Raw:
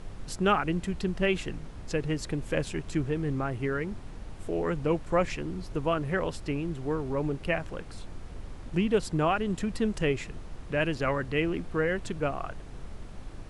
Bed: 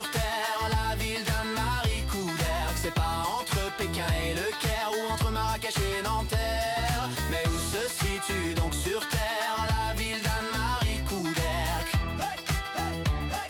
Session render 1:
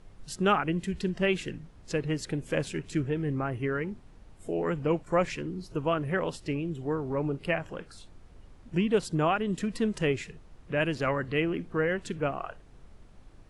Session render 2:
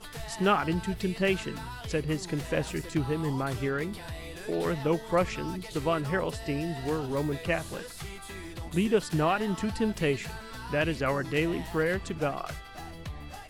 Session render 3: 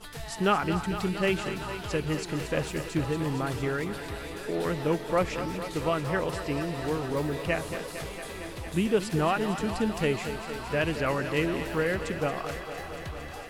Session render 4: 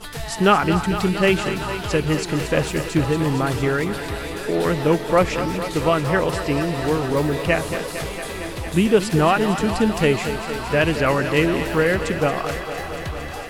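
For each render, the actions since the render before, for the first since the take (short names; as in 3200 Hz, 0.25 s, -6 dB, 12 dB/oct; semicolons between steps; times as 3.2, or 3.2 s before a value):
noise print and reduce 11 dB
add bed -12 dB
thinning echo 0.228 s, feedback 84%, high-pass 160 Hz, level -10.5 dB
gain +9 dB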